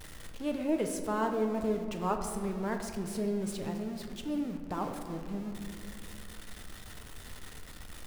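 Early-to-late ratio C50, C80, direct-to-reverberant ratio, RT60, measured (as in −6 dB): 6.5 dB, 7.5 dB, 4.0 dB, 2.5 s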